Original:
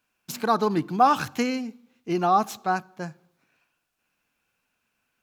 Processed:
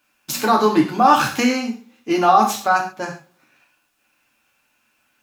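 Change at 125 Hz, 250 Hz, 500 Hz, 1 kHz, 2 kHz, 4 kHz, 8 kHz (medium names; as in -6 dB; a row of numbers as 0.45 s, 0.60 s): +2.5 dB, +7.5 dB, +6.5 dB, +7.0 dB, +10.0 dB, +10.0 dB, +11.0 dB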